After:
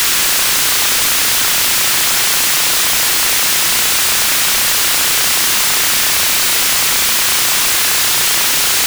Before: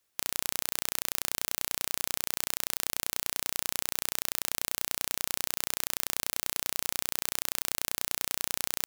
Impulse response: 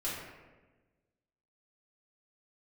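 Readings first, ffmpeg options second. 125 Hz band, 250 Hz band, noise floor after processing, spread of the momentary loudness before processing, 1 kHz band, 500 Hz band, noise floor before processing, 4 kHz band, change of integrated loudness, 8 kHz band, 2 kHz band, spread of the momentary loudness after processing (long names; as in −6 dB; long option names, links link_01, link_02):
+17.0 dB, +17.0 dB, −13 dBFS, 0 LU, +21.0 dB, +17.5 dB, −76 dBFS, +23.5 dB, +21.0 dB, +21.5 dB, +23.5 dB, 0 LU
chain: -filter_complex "[0:a]aeval=exprs='val(0)+0.5*0.0708*sgn(val(0))':channel_layout=same,highpass=frequency=490:width=0.5412,highpass=frequency=490:width=1.3066,asplit=2[link_01][link_02];[link_02]highpass=frequency=720:poles=1,volume=31dB,asoftclip=type=tanh:threshold=-2dB[link_03];[link_01][link_03]amix=inputs=2:normalize=0,lowpass=frequency=7000:poles=1,volume=-6dB"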